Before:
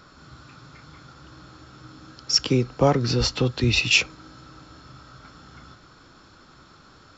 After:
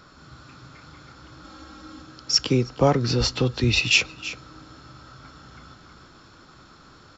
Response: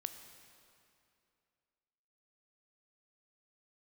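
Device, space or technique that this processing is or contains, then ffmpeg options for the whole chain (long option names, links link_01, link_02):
ducked delay: -filter_complex "[0:a]asplit=3[link_01][link_02][link_03];[link_02]adelay=319,volume=-5.5dB[link_04];[link_03]apad=whole_len=330675[link_05];[link_04][link_05]sidechaincompress=threshold=-43dB:ratio=5:attack=9.5:release=234[link_06];[link_01][link_06]amix=inputs=2:normalize=0,asettb=1/sr,asplit=3[link_07][link_08][link_09];[link_07]atrim=end=1.444[link_10];[link_08]atrim=start=1.44:end=2.02,asetpts=PTS-STARTPTS,afade=type=in:duration=0.004:curve=qsin,afade=type=out:start_time=0.576:duration=0.004:curve=qsin,aecho=1:1:3.7:0.94,atrim=end_sample=25578[link_11];[link_09]atrim=start=2.016[link_12];[link_10][link_11]acrossfade=duration=0.004:curve1=hsin:curve2=qsin[link_13];[link_13][link_12]acrossfade=duration=0.004:curve1=qsin:curve2=hsin"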